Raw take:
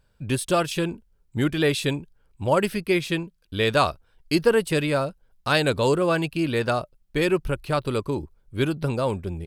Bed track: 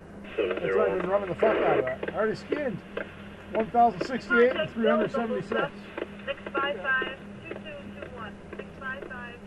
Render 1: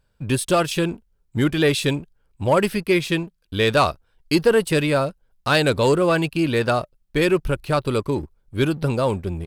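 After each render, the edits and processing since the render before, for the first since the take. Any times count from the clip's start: sample leveller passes 1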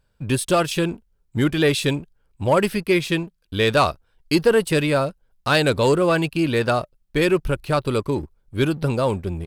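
nothing audible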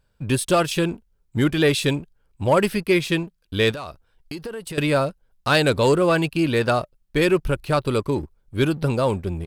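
3.71–4.78 compressor 10:1, threshold -29 dBFS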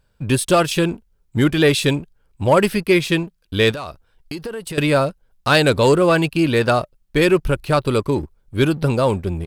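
gain +3.5 dB

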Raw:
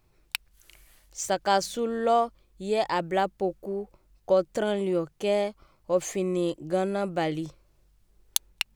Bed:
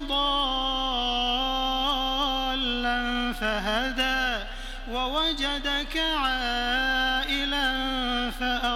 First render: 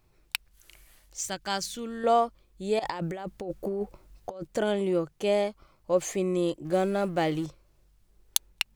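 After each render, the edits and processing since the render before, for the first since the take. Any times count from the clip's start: 1.21–2.04 bell 580 Hz -12 dB 2 oct; 2.79–4.47 negative-ratio compressor -34 dBFS; 6.65–7.46 G.711 law mismatch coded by mu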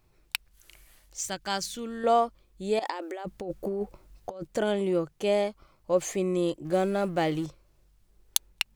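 2.82–3.25 brick-wall FIR high-pass 240 Hz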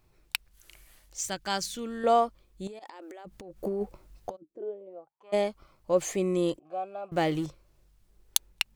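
2.67–3.63 compressor 12:1, threshold -41 dBFS; 4.35–5.32 band-pass 250 Hz -> 1200 Hz, Q 13; 6.59–7.12 vowel filter a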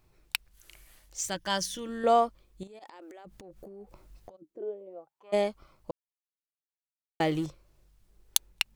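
1.34–1.89 ripple EQ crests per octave 1.2, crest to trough 8 dB; 2.63–4.45 compressor 8:1, threshold -44 dBFS; 5.91–7.2 mute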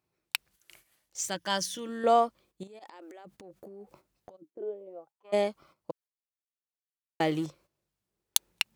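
HPF 140 Hz 12 dB/oct; gate -57 dBFS, range -12 dB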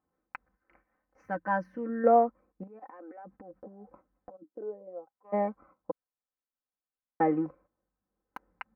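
inverse Chebyshev low-pass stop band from 3200 Hz, stop band 40 dB; comb 3.9 ms, depth 78%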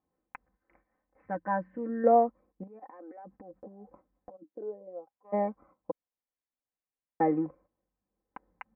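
LPF 2300 Hz 24 dB/oct; bell 1400 Hz -8 dB 0.44 oct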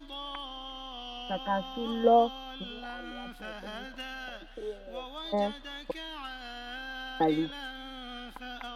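add bed -15.5 dB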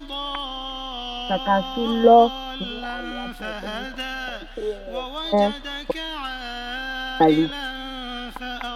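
gain +10.5 dB; limiter -3 dBFS, peak gain reduction 2.5 dB

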